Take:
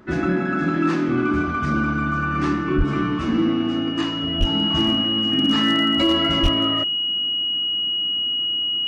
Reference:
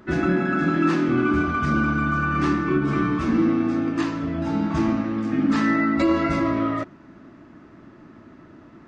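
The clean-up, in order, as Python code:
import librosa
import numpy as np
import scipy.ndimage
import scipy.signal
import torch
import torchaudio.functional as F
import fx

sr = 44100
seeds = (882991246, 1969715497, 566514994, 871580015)

y = fx.fix_declip(x, sr, threshold_db=-11.0)
y = fx.notch(y, sr, hz=2900.0, q=30.0)
y = fx.highpass(y, sr, hz=140.0, slope=24, at=(2.77, 2.89), fade=0.02)
y = fx.highpass(y, sr, hz=140.0, slope=24, at=(4.39, 4.51), fade=0.02)
y = fx.highpass(y, sr, hz=140.0, slope=24, at=(6.42, 6.54), fade=0.02)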